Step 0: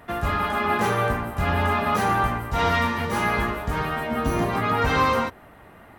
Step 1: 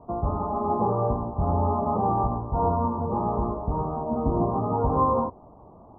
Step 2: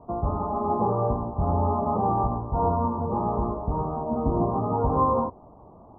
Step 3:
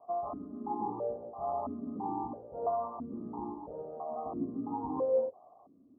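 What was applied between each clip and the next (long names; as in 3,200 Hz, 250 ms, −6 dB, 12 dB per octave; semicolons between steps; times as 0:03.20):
Butterworth low-pass 1,100 Hz 72 dB per octave
no processing that can be heard
formant filter that steps through the vowels 3 Hz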